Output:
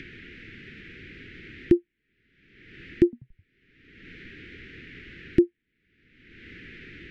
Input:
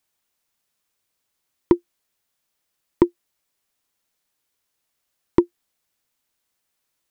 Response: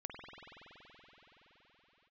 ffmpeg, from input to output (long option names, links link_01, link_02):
-filter_complex "[0:a]lowpass=frequency=2100:width=0.5412,lowpass=frequency=2100:width=1.3066,acompressor=mode=upward:threshold=-20dB:ratio=2.5,asuperstop=centerf=840:order=8:qfactor=0.61,asettb=1/sr,asplit=3[link_01][link_02][link_03];[link_01]atrim=end=3.044[link_04];[link_02]atrim=start=3.04:end=5.41,asetpts=PTS-STARTPTS,afade=type=in:duration=0.004:curve=qsin,afade=type=out:start_time=2.366:duration=0.004:curve=qsin,asplit=5[link_05][link_06][link_07][link_08][link_09];[link_06]adelay=87,afreqshift=-110,volume=-23dB[link_10];[link_07]adelay=174,afreqshift=-220,volume=-28dB[link_11];[link_08]adelay=261,afreqshift=-330,volume=-33.1dB[link_12];[link_09]adelay=348,afreqshift=-440,volume=-38.1dB[link_13];[link_05][link_10][link_11][link_12][link_13]amix=inputs=5:normalize=0,atrim=end_sample=104517[link_14];[link_03]atrim=start=5.406[link_15];[link_04][link_14]acrossfade=duration=0.004:curve1=hsin:curve2=qsin[link_16];[link_16][link_15]acrossfade=duration=0.004:curve1=qsin:curve2=hsin,alimiter=level_in=16dB:limit=-1dB:release=50:level=0:latency=1,volume=-7.5dB"